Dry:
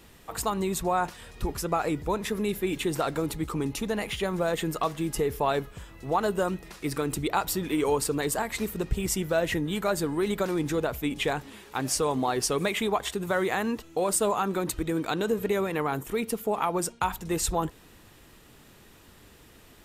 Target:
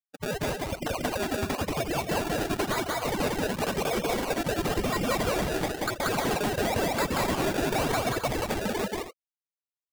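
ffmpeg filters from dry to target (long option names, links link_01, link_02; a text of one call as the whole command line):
ffmpeg -i in.wav -filter_complex "[0:a]aecho=1:1:5.2:0.86,asetrate=88200,aresample=44100,lowpass=frequency=2600:width_type=q:width=0.5098,lowpass=frequency=2600:width_type=q:width=0.6013,lowpass=frequency=2600:width_type=q:width=0.9,lowpass=frequency=2600:width_type=q:width=2.563,afreqshift=-3100,afftdn=noise_reduction=21:noise_floor=-40,agate=range=-33dB:threshold=-54dB:ratio=3:detection=peak,dynaudnorm=framelen=270:gausssize=13:maxgain=11.5dB,afftfilt=real='re*gte(hypot(re,im),0.0794)':imag='im*gte(hypot(re,im),0.0794)':win_size=1024:overlap=0.75,acrusher=samples=29:mix=1:aa=0.000001:lfo=1:lforange=29:lforate=0.96,lowshelf=frequency=260:gain=-6,asoftclip=type=hard:threshold=-18.5dB,acompressor=threshold=-28dB:ratio=6,asplit=2[link_01][link_02];[link_02]aecho=0:1:183.7|265.3:0.891|0.316[link_03];[link_01][link_03]amix=inputs=2:normalize=0" out.wav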